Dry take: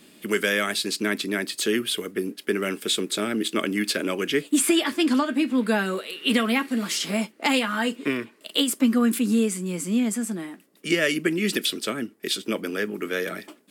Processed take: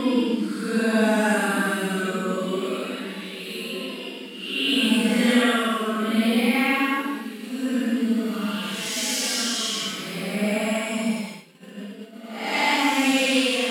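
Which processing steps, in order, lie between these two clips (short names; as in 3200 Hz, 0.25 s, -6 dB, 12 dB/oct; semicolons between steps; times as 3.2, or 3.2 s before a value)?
split-band echo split 450 Hz, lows 0.204 s, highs 0.585 s, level -11 dB; Paulstretch 6.7×, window 0.10 s, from 5.57; expander -34 dBFS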